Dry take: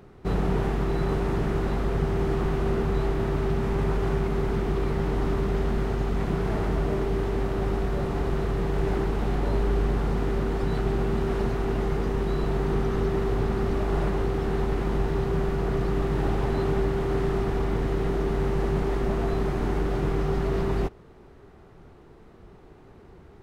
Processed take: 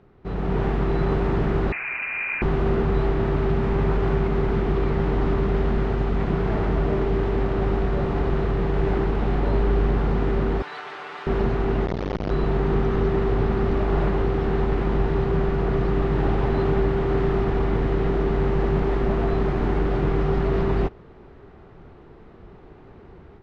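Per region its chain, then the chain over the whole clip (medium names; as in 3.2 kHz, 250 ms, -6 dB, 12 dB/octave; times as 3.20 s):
1.72–2.42 s: high-pass 360 Hz + frequency inversion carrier 2.8 kHz
10.62–11.27 s: high-pass 1.1 kHz + comb 6.8 ms, depth 64%
11.86–12.31 s: one-bit delta coder 32 kbps, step -31.5 dBFS + comb 5.6 ms, depth 87% + transformer saturation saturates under 600 Hz
whole clip: low-pass 3.6 kHz 12 dB/octave; level rider gain up to 9 dB; trim -5 dB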